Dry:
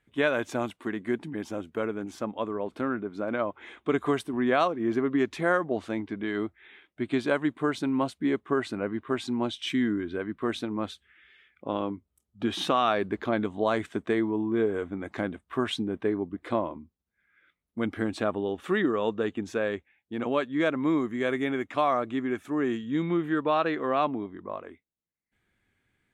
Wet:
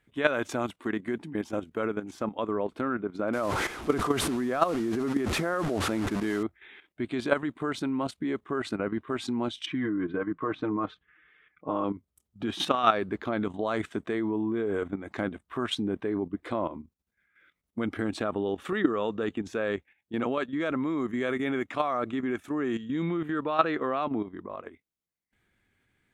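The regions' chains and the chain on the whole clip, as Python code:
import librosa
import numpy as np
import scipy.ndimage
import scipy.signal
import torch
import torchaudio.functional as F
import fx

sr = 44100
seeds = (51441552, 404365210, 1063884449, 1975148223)

y = fx.chain(x, sr, fx.delta_mod(bps=64000, step_db=-33.5),
    fx.high_shelf(hz=2000.0, db=-8.0),
    fx.sustainer(db_per_s=30.0), at=(3.33, 6.43))
y = fx.chain(y, sr, fx.lowpass(hz=1800.0, slope=12),
    fx.peak_eq(hz=1100.0, db=6.5, octaves=0.21),
    fx.comb(ms=6.5, depth=0.65), at=(9.66, 11.84))
y = fx.dynamic_eq(y, sr, hz=1300.0, q=7.3, threshold_db=-48.0, ratio=4.0, max_db=5)
y = fx.level_steps(y, sr, step_db=11)
y = F.gain(torch.from_numpy(y), 4.5).numpy()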